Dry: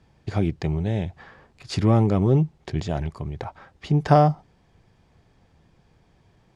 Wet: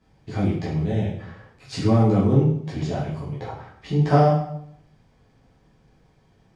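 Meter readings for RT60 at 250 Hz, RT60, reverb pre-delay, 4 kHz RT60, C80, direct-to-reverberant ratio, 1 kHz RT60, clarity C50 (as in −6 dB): 0.80 s, 0.70 s, 8 ms, 0.60 s, 6.5 dB, −9.0 dB, 0.65 s, 3.0 dB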